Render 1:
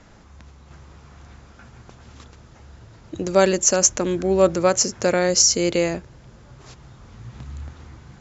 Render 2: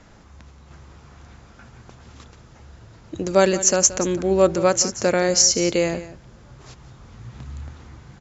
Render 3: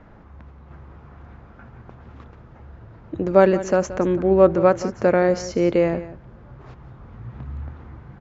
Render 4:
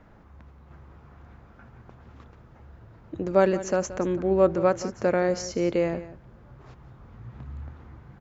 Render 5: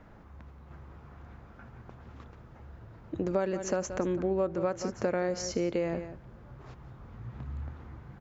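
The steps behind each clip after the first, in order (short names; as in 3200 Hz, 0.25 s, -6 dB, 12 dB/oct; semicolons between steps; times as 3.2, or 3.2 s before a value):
echo 0.176 s -15 dB
LPF 1600 Hz 12 dB/oct; gain +2.5 dB
high shelf 6000 Hz +12 dB; gain -6 dB
compressor 6:1, threshold -26 dBFS, peak gain reduction 11.5 dB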